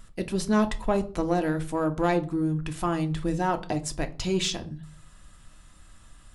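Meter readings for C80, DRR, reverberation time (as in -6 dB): 22.0 dB, 7.0 dB, 0.40 s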